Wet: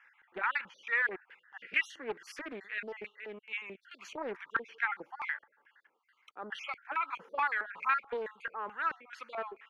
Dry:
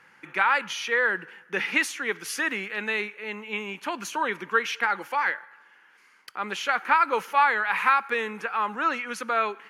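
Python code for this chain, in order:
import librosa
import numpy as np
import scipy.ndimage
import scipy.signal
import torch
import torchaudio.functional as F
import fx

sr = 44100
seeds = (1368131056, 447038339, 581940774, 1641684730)

y = fx.spec_dropout(x, sr, seeds[0], share_pct=39)
y = fx.filter_lfo_bandpass(y, sr, shape='square', hz=2.3, low_hz=450.0, high_hz=1900.0, q=1.3)
y = fx.doppler_dist(y, sr, depth_ms=0.51)
y = F.gain(torch.from_numpy(y), -4.5).numpy()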